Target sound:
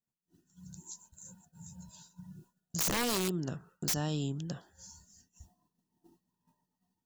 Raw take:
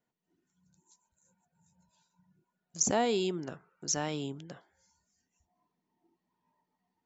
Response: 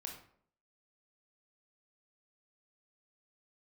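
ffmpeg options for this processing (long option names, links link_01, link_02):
-filter_complex "[0:a]bass=frequency=250:gain=12,treble=frequency=4000:gain=14,asplit=2[link_01][link_02];[link_02]asoftclip=type=tanh:threshold=-18.5dB,volume=-4dB[link_03];[link_01][link_03]amix=inputs=2:normalize=0,acontrast=67,asuperstop=centerf=2200:order=20:qfactor=4.4,highshelf=frequency=4400:gain=-3.5,aeval=exprs='(mod(3.16*val(0)+1,2)-1)/3.16':channel_layout=same,acompressor=threshold=-43dB:ratio=2,agate=range=-33dB:threshold=-53dB:ratio=3:detection=peak"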